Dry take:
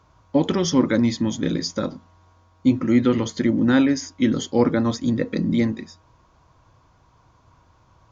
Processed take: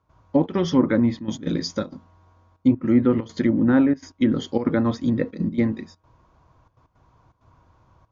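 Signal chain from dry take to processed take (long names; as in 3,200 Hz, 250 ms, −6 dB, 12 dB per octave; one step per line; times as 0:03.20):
gate pattern ".xxxx.xxxxxxx.x" 164 BPM −12 dB
treble cut that deepens with the level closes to 1,400 Hz, closed at −14 dBFS
one half of a high-frequency compander decoder only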